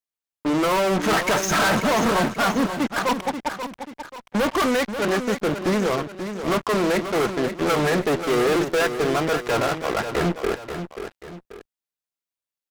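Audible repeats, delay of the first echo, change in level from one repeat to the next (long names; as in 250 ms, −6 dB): 2, 535 ms, −7.5 dB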